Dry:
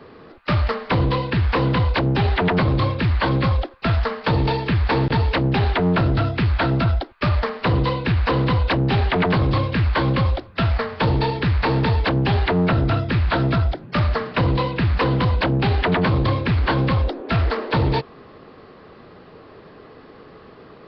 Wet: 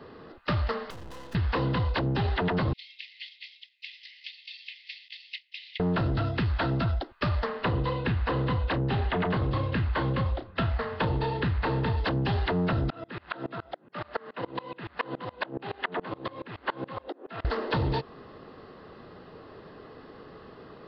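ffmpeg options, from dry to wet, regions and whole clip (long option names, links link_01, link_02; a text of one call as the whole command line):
ffmpeg -i in.wav -filter_complex "[0:a]asettb=1/sr,asplit=3[link_01][link_02][link_03];[link_01]atrim=end=0.904[link_04];[link_02]atrim=start=0.9:end=1.35,asetpts=PTS-STARTPTS,afade=type=in:duration=0.004:curve=qsin,afade=type=out:start_time=0.446:duration=0.004:curve=qsin,equalizer=frequency=130:width=3.3:gain=-10,aeval=exprs='(tanh(25.1*val(0)+0.5)-tanh(0.5))/25.1':channel_layout=same,aeval=exprs='max(val(0),0)':channel_layout=same[link_05];[link_03]atrim=start=1.346[link_06];[link_04][link_05]acrossfade=duration=0.004:curve1=hsin:curve2=qsin[link_07];[link_07][link_06]acrossfade=duration=0.004:curve1=qsin:curve2=hsin,asettb=1/sr,asplit=3[link_08][link_09][link_10];[link_08]atrim=end=2.734[link_11];[link_09]atrim=start=2.73:end=5.8,asetpts=PTS-STARTPTS,afade=type=in:duration=0.004:curve=qsin,afade=type=out:start_time=3.066:duration=0.004:curve=qsin,acompressor=threshold=-27dB:ratio=2:attack=3.2:release=140:knee=1:detection=peak,asuperpass=centerf=3900:order=20:qfactor=0.77,equalizer=frequency=4400:width_type=o:width=0.34:gain=-2.5[link_12];[link_10]atrim=start=5.796[link_13];[link_11][link_12]acrossfade=duration=0.004:curve1=hsin:curve2=qsin[link_14];[link_14][link_13]acrossfade=duration=0.004:curve1=qsin:curve2=hsin,asettb=1/sr,asplit=3[link_15][link_16][link_17];[link_15]atrim=end=7.464[link_18];[link_16]atrim=start=7.46:end=11.97,asetpts=PTS-STARTPTS,afade=type=in:duration=0.004:curve=qsin,afade=type=out:start_time=4.506:duration=0.004:curve=qsin,lowpass=3600,asplit=2[link_19][link_20];[link_20]adelay=32,volume=-11dB[link_21];[link_19][link_21]amix=inputs=2:normalize=0,atrim=end_sample=198891[link_22];[link_17]atrim=start=11.966[link_23];[link_18][link_22]acrossfade=duration=0.004:curve1=hsin:curve2=qsin[link_24];[link_24][link_23]acrossfade=duration=0.004:curve1=qsin:curve2=hsin,asettb=1/sr,asplit=3[link_25][link_26][link_27];[link_25]atrim=end=12.904[link_28];[link_26]atrim=start=12.9:end=17.45,asetpts=PTS-STARTPTS,afade=type=in:duration=0.004:curve=qsin,afade=type=out:start_time=4.546:duration=0.004:curve=qsin,highpass=300,lowpass=3200,aeval=exprs='val(0)*pow(10,-27*if(lt(mod(-7.1*n/s,1),2*abs(-7.1)/1000),1-mod(-7.1*n/s,1)/(2*abs(-7.1)/1000),(mod(-7.1*n/s,1)-2*abs(-7.1)/1000)/(1-2*abs(-7.1)/1000))/20)':channel_layout=same[link_29];[link_27]atrim=start=17.446[link_30];[link_28][link_29]acrossfade=duration=0.004:curve1=hsin:curve2=qsin[link_31];[link_31][link_30]acrossfade=duration=0.004:curve1=qsin:curve2=hsin,bandreject=frequency=2300:width=8.3,acompressor=threshold=-21dB:ratio=6,volume=-3.5dB" out.wav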